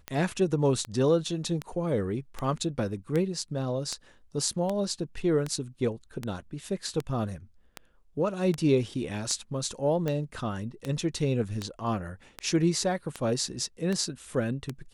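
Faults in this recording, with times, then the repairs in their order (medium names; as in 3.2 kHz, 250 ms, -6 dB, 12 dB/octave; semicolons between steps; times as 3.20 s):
tick 78 rpm -17 dBFS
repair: de-click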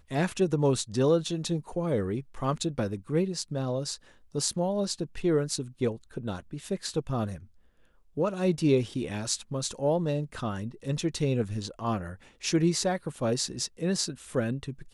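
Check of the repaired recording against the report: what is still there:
nothing left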